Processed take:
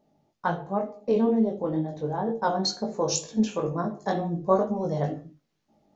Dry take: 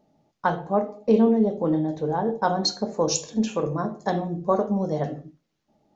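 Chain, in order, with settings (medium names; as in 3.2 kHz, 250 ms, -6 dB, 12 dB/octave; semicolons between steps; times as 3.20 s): chorus 2.1 Hz, delay 17.5 ms, depth 3.7 ms; gain riding 2 s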